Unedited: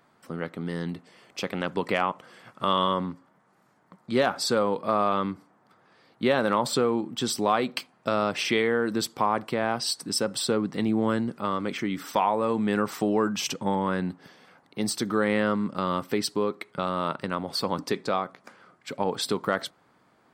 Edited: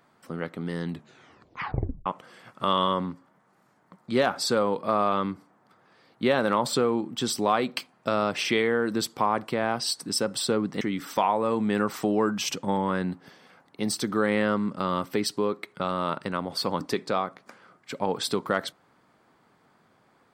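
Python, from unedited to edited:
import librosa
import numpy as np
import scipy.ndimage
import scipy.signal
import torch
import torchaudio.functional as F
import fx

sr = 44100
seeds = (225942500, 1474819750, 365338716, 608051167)

y = fx.edit(x, sr, fx.tape_stop(start_s=0.89, length_s=1.17),
    fx.cut(start_s=10.81, length_s=0.98), tone=tone)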